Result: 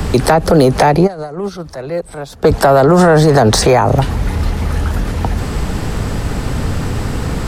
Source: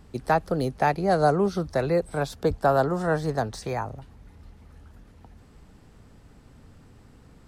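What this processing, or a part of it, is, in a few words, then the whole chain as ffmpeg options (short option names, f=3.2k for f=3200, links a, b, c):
mastering chain: -filter_complex "[0:a]equalizer=f=250:t=o:w=0.76:g=-3,acrossover=split=160|690|1600[a][b][c][d];[a]acompressor=threshold=-46dB:ratio=4[e];[b]acompressor=threshold=-28dB:ratio=4[f];[c]acompressor=threshold=-38dB:ratio=4[g];[d]acompressor=threshold=-46dB:ratio=4[h];[e][f][g][h]amix=inputs=4:normalize=0,acompressor=threshold=-32dB:ratio=2,asoftclip=type=tanh:threshold=-24.5dB,alimiter=level_in=35dB:limit=-1dB:release=50:level=0:latency=1,asplit=3[i][j][k];[i]afade=t=out:st=1.06:d=0.02[l];[j]agate=range=-20dB:threshold=-4dB:ratio=16:detection=peak,afade=t=in:st=1.06:d=0.02,afade=t=out:st=2.43:d=0.02[m];[k]afade=t=in:st=2.43:d=0.02[n];[l][m][n]amix=inputs=3:normalize=0,volume=-1dB"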